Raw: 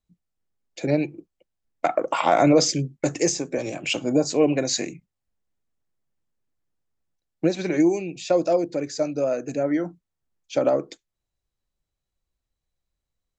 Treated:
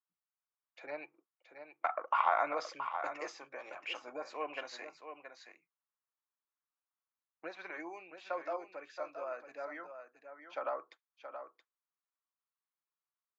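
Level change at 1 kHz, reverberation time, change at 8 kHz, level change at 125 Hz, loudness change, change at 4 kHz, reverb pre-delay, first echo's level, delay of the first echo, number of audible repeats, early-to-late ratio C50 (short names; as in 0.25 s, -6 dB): -8.0 dB, none, -30.5 dB, under -40 dB, -16.0 dB, -19.5 dB, none, -9.0 dB, 0.674 s, 1, none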